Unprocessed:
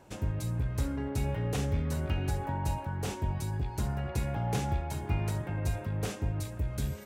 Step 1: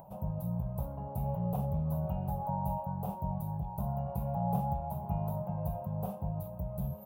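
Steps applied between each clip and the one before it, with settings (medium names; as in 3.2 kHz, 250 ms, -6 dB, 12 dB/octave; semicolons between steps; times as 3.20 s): FFT filter 110 Hz 0 dB, 180 Hz +14 dB, 270 Hz -11 dB, 400 Hz -9 dB, 620 Hz +12 dB, 970 Hz +8 dB, 1.9 kHz -26 dB, 2.7 kHz -15 dB, 7.1 kHz -24 dB, 15 kHz +15 dB; upward compressor, threshold -40 dBFS; trim -7 dB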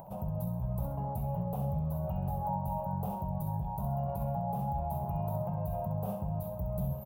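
peak limiter -30 dBFS, peak gain reduction 10 dB; on a send: feedback delay 66 ms, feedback 35%, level -8.5 dB; on the sum: trim +3.5 dB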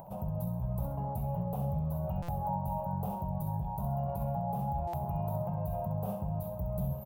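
buffer glitch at 2.22/4.87 s, samples 256, times 10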